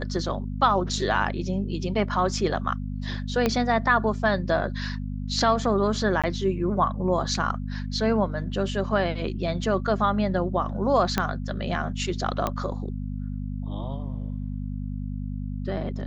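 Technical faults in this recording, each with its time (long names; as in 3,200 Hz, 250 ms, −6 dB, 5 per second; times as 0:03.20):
mains hum 50 Hz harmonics 5 −31 dBFS
0:03.46: click −9 dBFS
0:06.22–0:06.24: drop-out 16 ms
0:11.18: click −8 dBFS
0:12.47: click −12 dBFS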